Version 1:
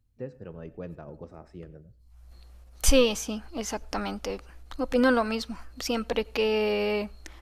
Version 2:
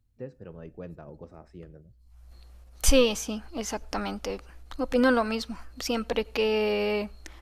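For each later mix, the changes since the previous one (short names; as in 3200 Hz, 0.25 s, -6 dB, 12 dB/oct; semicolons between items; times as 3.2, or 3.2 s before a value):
first voice: send -11.0 dB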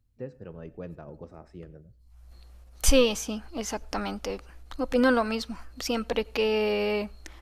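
first voice: send +8.5 dB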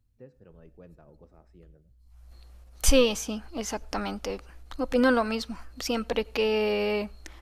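first voice -11.0 dB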